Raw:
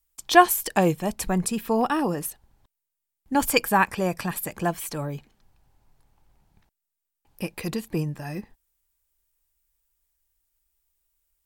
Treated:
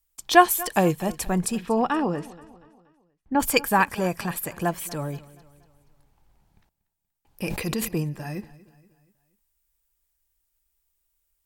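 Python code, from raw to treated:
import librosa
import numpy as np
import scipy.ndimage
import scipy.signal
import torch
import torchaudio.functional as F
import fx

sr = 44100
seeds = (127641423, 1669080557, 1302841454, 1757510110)

y = fx.lowpass(x, sr, hz=fx.line((1.57, 4900.0), (3.39, 1900.0)), slope=12, at=(1.57, 3.39), fade=0.02)
y = fx.echo_feedback(y, sr, ms=238, feedback_pct=47, wet_db=-20.0)
y = fx.sustainer(y, sr, db_per_s=31.0, at=(7.45, 7.87), fade=0.02)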